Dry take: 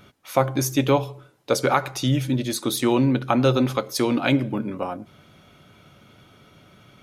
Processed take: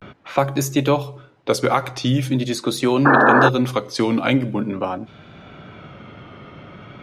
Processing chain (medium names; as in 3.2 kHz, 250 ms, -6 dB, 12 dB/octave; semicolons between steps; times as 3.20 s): level-controlled noise filter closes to 2.2 kHz, open at -17.5 dBFS; vibrato 0.43 Hz 76 cents; painted sound noise, 3.05–3.49 s, 210–1800 Hz -13 dBFS; three bands compressed up and down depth 40%; trim +2 dB